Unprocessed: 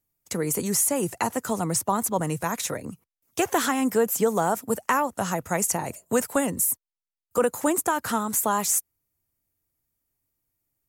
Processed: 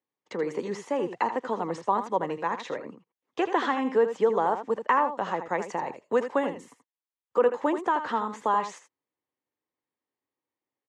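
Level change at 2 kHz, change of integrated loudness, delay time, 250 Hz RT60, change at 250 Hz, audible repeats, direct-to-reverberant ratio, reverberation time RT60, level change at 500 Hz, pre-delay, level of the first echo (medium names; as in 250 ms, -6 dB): -2.5 dB, -3.0 dB, 80 ms, no reverb, -5.5 dB, 1, no reverb, no reverb, 0.0 dB, no reverb, -10.0 dB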